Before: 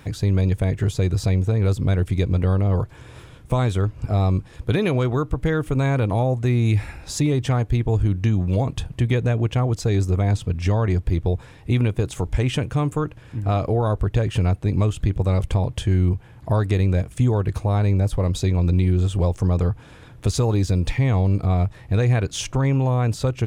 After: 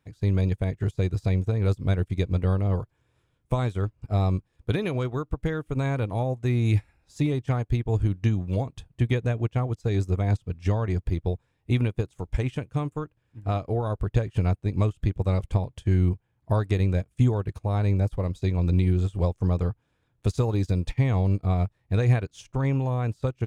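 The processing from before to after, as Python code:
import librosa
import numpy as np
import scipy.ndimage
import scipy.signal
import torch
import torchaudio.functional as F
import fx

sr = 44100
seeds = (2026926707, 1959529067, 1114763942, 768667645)

y = fx.upward_expand(x, sr, threshold_db=-33.0, expansion=2.5)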